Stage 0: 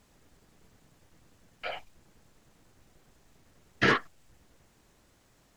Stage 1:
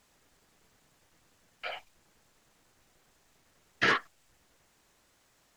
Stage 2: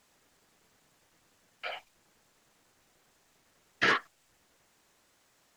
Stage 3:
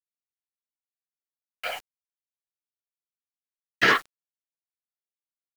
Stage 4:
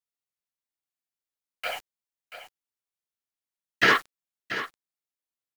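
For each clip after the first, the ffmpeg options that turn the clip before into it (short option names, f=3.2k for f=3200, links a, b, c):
-af "lowshelf=f=450:g=-10.5"
-af "lowshelf=f=88:g=-9"
-af "acrusher=bits=7:mix=0:aa=0.000001,volume=6.5dB"
-af "aecho=1:1:684:0.251"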